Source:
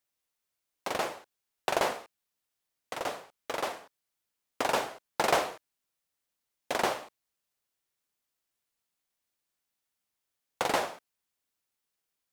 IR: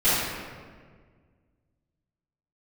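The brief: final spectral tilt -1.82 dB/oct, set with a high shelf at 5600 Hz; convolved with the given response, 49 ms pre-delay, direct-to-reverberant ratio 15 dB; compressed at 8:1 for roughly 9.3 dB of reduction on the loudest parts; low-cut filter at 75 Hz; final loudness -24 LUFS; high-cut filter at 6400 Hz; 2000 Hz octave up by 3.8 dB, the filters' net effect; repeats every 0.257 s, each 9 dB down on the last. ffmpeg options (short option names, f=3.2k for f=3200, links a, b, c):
-filter_complex "[0:a]highpass=75,lowpass=6.4k,equalizer=f=2k:t=o:g=4,highshelf=f=5.6k:g=6.5,acompressor=threshold=-31dB:ratio=8,aecho=1:1:257|514|771|1028:0.355|0.124|0.0435|0.0152,asplit=2[a][b];[1:a]atrim=start_sample=2205,adelay=49[c];[b][c]afir=irnorm=-1:irlink=0,volume=-32.5dB[d];[a][d]amix=inputs=2:normalize=0,volume=14.5dB"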